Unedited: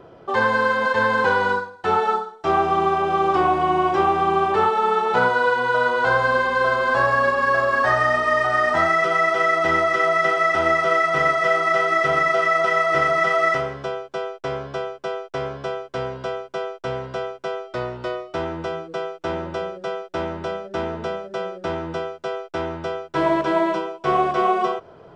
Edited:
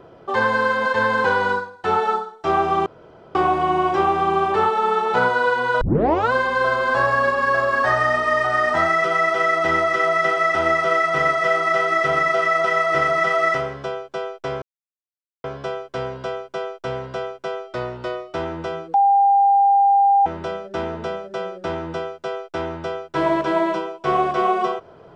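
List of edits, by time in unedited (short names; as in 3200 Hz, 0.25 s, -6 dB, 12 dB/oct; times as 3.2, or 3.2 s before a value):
2.86–3.35 room tone
5.81 tape start 0.51 s
14.62–15.44 mute
18.94–20.26 bleep 798 Hz -11.5 dBFS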